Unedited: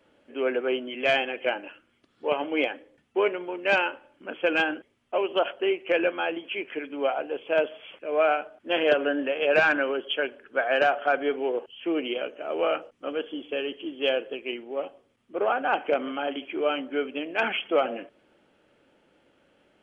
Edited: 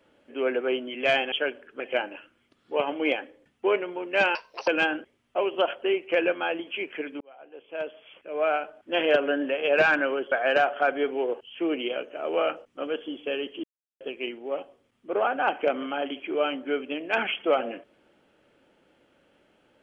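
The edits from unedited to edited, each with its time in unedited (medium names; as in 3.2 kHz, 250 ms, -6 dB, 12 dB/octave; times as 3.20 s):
3.87–4.45 s: speed 178%
6.98–8.71 s: fade in
10.09–10.57 s: move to 1.32 s
13.89–14.26 s: mute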